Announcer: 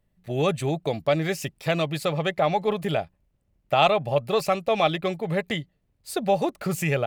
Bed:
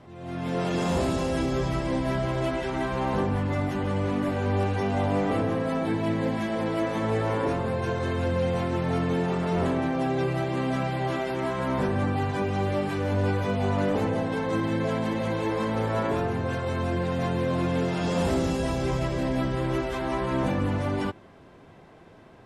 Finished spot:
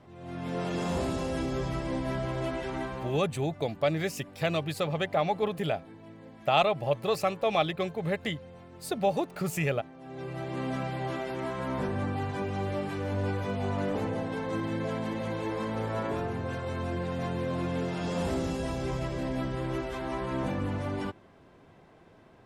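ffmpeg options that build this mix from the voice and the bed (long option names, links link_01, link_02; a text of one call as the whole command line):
ffmpeg -i stem1.wav -i stem2.wav -filter_complex "[0:a]adelay=2750,volume=-4.5dB[link_01];[1:a]volume=12dB,afade=type=out:start_time=2.76:duration=0.47:silence=0.133352,afade=type=in:start_time=10.01:duration=0.63:silence=0.141254[link_02];[link_01][link_02]amix=inputs=2:normalize=0" out.wav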